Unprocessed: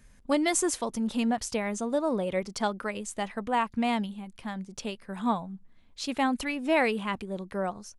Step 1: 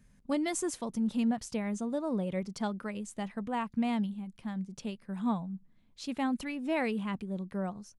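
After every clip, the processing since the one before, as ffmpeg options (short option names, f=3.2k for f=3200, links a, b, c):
-af "equalizer=f=170:w=1:g=10.5,volume=-8.5dB"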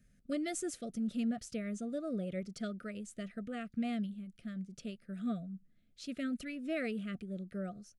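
-af "asuperstop=centerf=930:order=20:qfactor=2,volume=-5dB"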